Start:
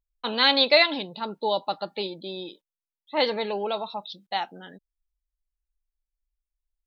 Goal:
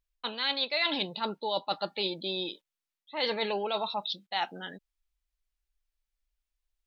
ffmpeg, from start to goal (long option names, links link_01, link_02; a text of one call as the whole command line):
ffmpeg -i in.wav -af "equalizer=frequency=2800:width_type=o:width=2.6:gain=6.5,areverse,acompressor=threshold=-27dB:ratio=8,areverse" out.wav